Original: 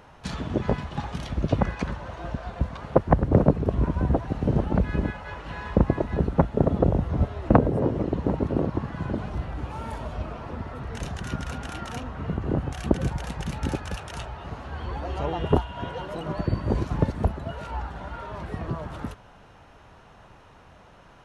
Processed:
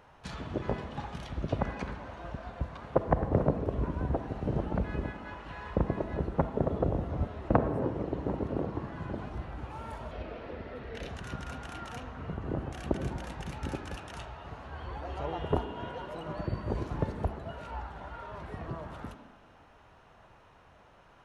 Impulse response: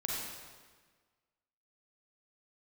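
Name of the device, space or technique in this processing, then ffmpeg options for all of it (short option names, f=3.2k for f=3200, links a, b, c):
filtered reverb send: -filter_complex "[0:a]asettb=1/sr,asplit=3[a][b][c];[a]atrim=end=10.114[d];[b]atrim=start=10.11:end=11.09,asetpts=PTS-STARTPTS,afade=t=in:d=0.004:c=qsin,afade=t=out:st=0.976:d=0.004:c=qsin,equalizer=f=125:t=o:w=1:g=-6,equalizer=f=250:t=o:w=1:g=3,equalizer=f=500:t=o:w=1:g=7,equalizer=f=1k:t=o:w=1:g=-8,equalizer=f=2k:t=o:w=1:g=5,equalizer=f=4k:t=o:w=1:g=5,equalizer=f=8k:t=o:w=1:g=-9[e];[c]atrim=start=11.086[f];[d][e]acrossfade=d=0.004:c1=hsin:c2=qsin[g];[g][f]acrossfade=d=0.004:c1=qsin:c2=hsin,asplit=2[h][i];[i]highpass=f=200:w=0.5412,highpass=f=200:w=1.3066,lowpass=3.9k[j];[1:a]atrim=start_sample=2205[k];[j][k]afir=irnorm=-1:irlink=0,volume=-9dB[l];[h][l]amix=inputs=2:normalize=0,volume=-8.5dB"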